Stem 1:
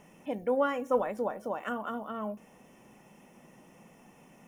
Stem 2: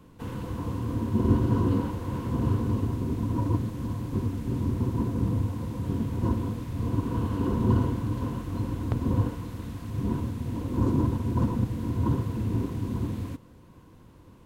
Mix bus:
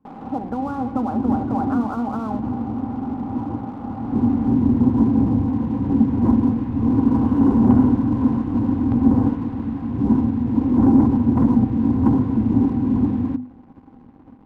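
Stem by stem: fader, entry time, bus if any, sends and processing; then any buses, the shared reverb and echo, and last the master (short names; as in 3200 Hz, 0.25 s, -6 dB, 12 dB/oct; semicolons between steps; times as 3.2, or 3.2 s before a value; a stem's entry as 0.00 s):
-2.0 dB, 0.05 s, no send, compressor, threshold -34 dBFS, peak gain reduction 12.5 dB; steep low-pass 1400 Hz 96 dB/oct; spectral compressor 2:1
3.84 s -14 dB -> 4.26 s -2.5 dB, 0.00 s, no send, LPF 1700 Hz 12 dB/oct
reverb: off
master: sample leveller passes 2; notches 50/100/150/200/250 Hz; small resonant body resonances 250/790 Hz, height 17 dB, ringing for 70 ms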